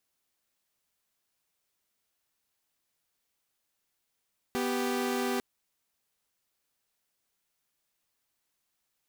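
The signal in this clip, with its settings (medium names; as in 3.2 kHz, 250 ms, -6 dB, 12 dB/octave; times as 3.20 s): chord B3/G4 saw, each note -28.5 dBFS 0.85 s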